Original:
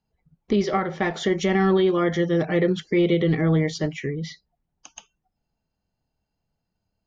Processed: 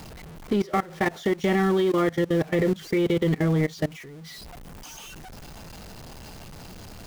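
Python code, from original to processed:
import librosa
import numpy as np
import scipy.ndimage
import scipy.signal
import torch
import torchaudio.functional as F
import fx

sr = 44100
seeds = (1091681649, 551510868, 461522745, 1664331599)

y = x + 0.5 * 10.0 ** (-28.0 / 20.0) * np.sign(x)
y = fx.level_steps(y, sr, step_db=21)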